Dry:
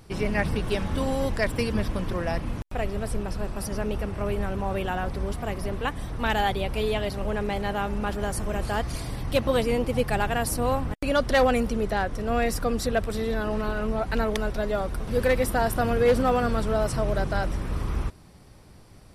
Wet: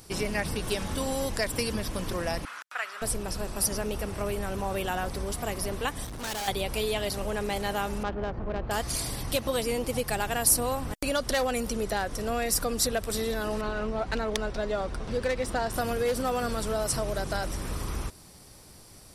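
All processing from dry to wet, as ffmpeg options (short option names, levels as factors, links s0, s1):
-filter_complex "[0:a]asettb=1/sr,asplit=3[s0][s1][s2];[s0]atrim=end=2.454[s3];[s1]atrim=start=2.45:end=3.02,asetpts=PTS-STARTPTS,afade=t=in:d=0.004:c=qsin,afade=t=out:st=0.566:d=0.004:c=qsin,highpass=f=1400:t=q:w=3.9,aemphasis=mode=reproduction:type=50kf[s4];[s2]atrim=start=3.016[s5];[s3][s4]acrossfade=d=0.004:c1=hsin:c2=qsin[s6];[s6][s5]acrossfade=d=0.004:c1=qsin:c2=hsin,asettb=1/sr,asplit=3[s7][s8][s9];[s7]atrim=end=6.044[s10];[s8]atrim=start=6.04:end=6.48,asetpts=PTS-STARTPTS,afade=t=in:d=0.004:c=qsin,afade=t=out:st=0.436:d=0.004:c=qsin,aeval=exprs='val(0)+0.0178*(sin(2*PI*60*n/s)+sin(2*PI*2*60*n/s)/2+sin(2*PI*3*60*n/s)/3+sin(2*PI*4*60*n/s)/4+sin(2*PI*5*60*n/s)/5)':c=same,volume=44.7,asoftclip=hard,volume=0.0224[s11];[s9]atrim=start=6.476[s12];[s10][s11]acrossfade=d=0.004:c1=hsin:c2=qsin[s13];[s13][s12]acrossfade=d=0.004:c1=qsin:c2=hsin,asettb=1/sr,asplit=3[s14][s15][s16];[s14]atrim=end=8.034[s17];[s15]atrim=start=8.03:end=8.71,asetpts=PTS-STARTPTS,afade=t=in:d=0.004:c=qsin,afade=t=out:st=0.676:d=0.004:c=qsin,lowpass=f=3400:w=0.5412,lowpass=f=3400:w=1.3066,adynamicsmooth=sensitivity=1:basefreq=1100[s18];[s16]atrim=start=8.706[s19];[s17][s18]acrossfade=d=0.004:c1=hsin:c2=qsin[s20];[s20][s19]acrossfade=d=0.004:c1=qsin:c2=hsin,asettb=1/sr,asplit=3[s21][s22][s23];[s21]atrim=end=13.614[s24];[s22]atrim=start=13.61:end=15.74,asetpts=PTS-STARTPTS,afade=t=in:d=0.004:c=qsin,afade=t=out:st=2.126:d=0.004:c=qsin,lowpass=f=11000:w=0.5412,lowpass=f=11000:w=1.3066,adynamicsmooth=sensitivity=2.5:basefreq=4300[s25];[s23]atrim=start=15.736[s26];[s24][s25]acrossfade=d=0.004:c1=hsin:c2=qsin[s27];[s27][s26]acrossfade=d=0.004:c1=qsin:c2=hsin,acompressor=threshold=0.0631:ratio=6,bass=f=250:g=-4,treble=f=4000:g=12"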